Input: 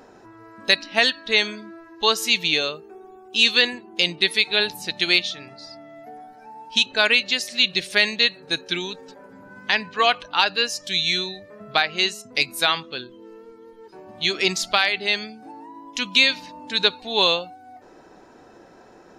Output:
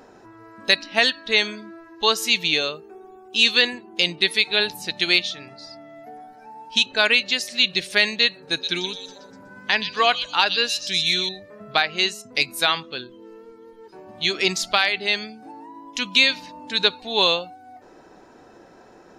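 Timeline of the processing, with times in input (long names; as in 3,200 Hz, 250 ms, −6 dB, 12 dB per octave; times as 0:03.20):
0:08.39–0:11.29: echo through a band-pass that steps 123 ms, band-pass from 4,300 Hz, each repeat 0.7 octaves, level −2.5 dB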